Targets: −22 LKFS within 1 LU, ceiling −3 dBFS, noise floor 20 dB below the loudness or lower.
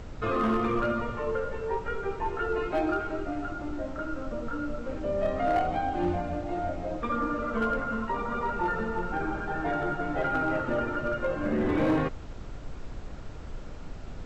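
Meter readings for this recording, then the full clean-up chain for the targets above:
share of clipped samples 0.6%; peaks flattened at −20.0 dBFS; background noise floor −40 dBFS; target noise floor −50 dBFS; integrated loudness −30.0 LKFS; sample peak −20.0 dBFS; target loudness −22.0 LKFS
→ clipped peaks rebuilt −20 dBFS
noise reduction from a noise print 10 dB
level +8 dB

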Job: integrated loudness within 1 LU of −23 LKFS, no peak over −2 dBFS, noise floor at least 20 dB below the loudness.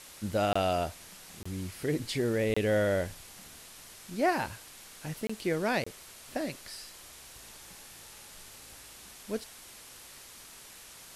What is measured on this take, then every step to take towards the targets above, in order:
number of dropouts 5; longest dropout 25 ms; background noise floor −51 dBFS; target noise floor −52 dBFS; integrated loudness −32.0 LKFS; sample peak −16.0 dBFS; target loudness −23.0 LKFS
→ repair the gap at 0:00.53/0:01.43/0:02.54/0:05.27/0:05.84, 25 ms
broadband denoise 6 dB, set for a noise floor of −51 dBFS
level +9 dB

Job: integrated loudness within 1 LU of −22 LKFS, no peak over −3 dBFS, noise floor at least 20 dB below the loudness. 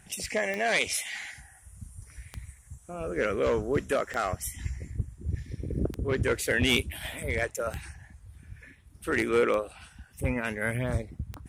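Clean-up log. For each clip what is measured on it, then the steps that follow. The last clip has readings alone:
number of clicks 7; integrated loudness −29.5 LKFS; sample peak −10.5 dBFS; target loudness −22.0 LKFS
→ click removal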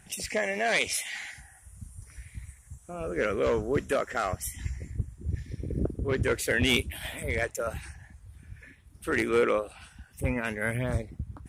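number of clicks 0; integrated loudness −29.5 LKFS; sample peak −11.0 dBFS; target loudness −22.0 LKFS
→ level +7.5 dB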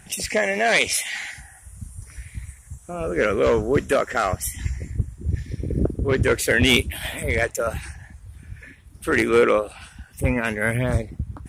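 integrated loudness −22.0 LKFS; sample peak −3.5 dBFS; background noise floor −48 dBFS

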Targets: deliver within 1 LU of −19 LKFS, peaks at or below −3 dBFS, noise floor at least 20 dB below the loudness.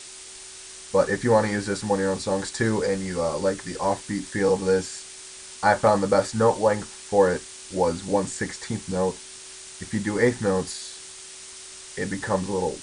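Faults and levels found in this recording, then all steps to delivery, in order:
background noise floor −42 dBFS; target noise floor −45 dBFS; integrated loudness −24.5 LKFS; sample peak −6.5 dBFS; target loudness −19.0 LKFS
→ broadband denoise 6 dB, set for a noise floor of −42 dBFS
level +5.5 dB
brickwall limiter −3 dBFS

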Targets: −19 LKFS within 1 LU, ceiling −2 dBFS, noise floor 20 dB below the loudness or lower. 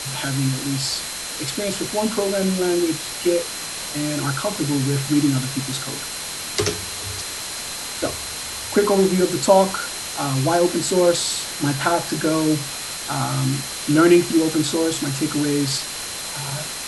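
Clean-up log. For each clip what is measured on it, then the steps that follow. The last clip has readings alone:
interfering tone 4,100 Hz; level of the tone −36 dBFS; background noise floor −30 dBFS; target noise floor −41 dBFS; integrated loudness −21.0 LKFS; sample peak −2.0 dBFS; target loudness −19.0 LKFS
→ notch filter 4,100 Hz, Q 30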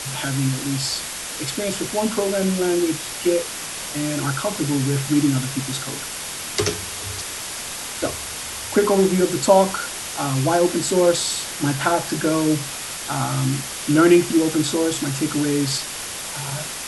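interfering tone none found; background noise floor −31 dBFS; target noise floor −42 dBFS
→ broadband denoise 11 dB, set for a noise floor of −31 dBFS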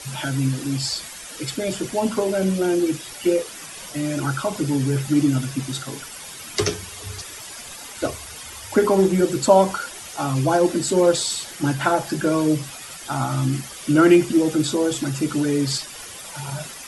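background noise floor −38 dBFS; target noise floor −42 dBFS
→ broadband denoise 6 dB, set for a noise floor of −38 dBFS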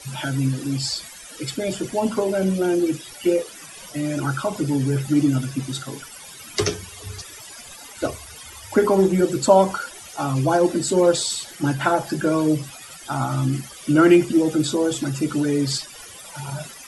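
background noise floor −41 dBFS; target noise floor −42 dBFS
→ broadband denoise 6 dB, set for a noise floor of −41 dBFS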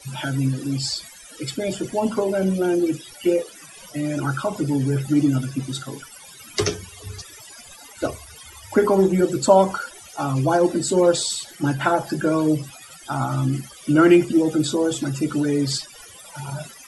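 background noise floor −44 dBFS; integrated loudness −21.5 LKFS; sample peak −2.5 dBFS; target loudness −19.0 LKFS
→ level +2.5 dB
brickwall limiter −2 dBFS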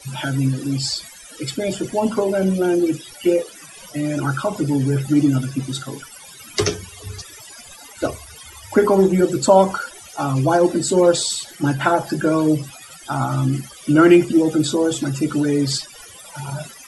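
integrated loudness −19.0 LKFS; sample peak −2.0 dBFS; background noise floor −41 dBFS

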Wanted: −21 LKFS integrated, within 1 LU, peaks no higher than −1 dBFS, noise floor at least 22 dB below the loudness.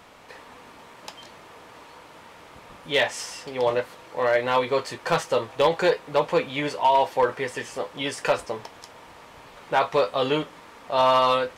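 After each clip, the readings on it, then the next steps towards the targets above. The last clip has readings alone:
share of clipped samples 0.3%; peaks flattened at −12.0 dBFS; integrated loudness −24.0 LKFS; sample peak −12.0 dBFS; target loudness −21.0 LKFS
→ clipped peaks rebuilt −12 dBFS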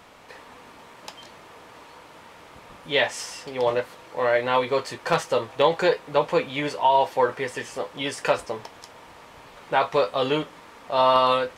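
share of clipped samples 0.0%; integrated loudness −23.5 LKFS; sample peak −5.0 dBFS; target loudness −21.0 LKFS
→ level +2.5 dB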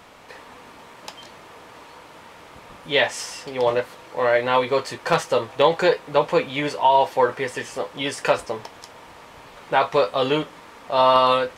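integrated loudness −21.0 LKFS; sample peak −2.5 dBFS; background noise floor −45 dBFS

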